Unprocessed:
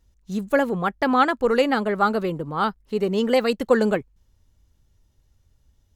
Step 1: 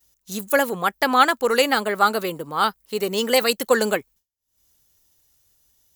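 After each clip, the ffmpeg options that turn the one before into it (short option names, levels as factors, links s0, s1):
-af "aemphasis=mode=production:type=riaa,acompressor=mode=upward:threshold=0.00891:ratio=2.5,agate=range=0.0224:threshold=0.00708:ratio=3:detection=peak,volume=1.33"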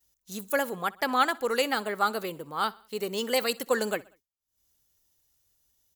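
-af "aecho=1:1:63|126|189:0.0708|0.0368|0.0191,volume=0.398"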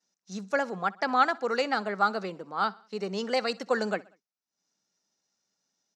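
-af "highpass=f=170:w=0.5412,highpass=f=170:w=1.3066,equalizer=f=190:t=q:w=4:g=8,equalizer=f=720:t=q:w=4:g=6,equalizer=f=1400:t=q:w=4:g=4,equalizer=f=3200:t=q:w=4:g=-7,equalizer=f=5600:t=q:w=4:g=7,lowpass=f=5900:w=0.5412,lowpass=f=5900:w=1.3066,volume=0.794"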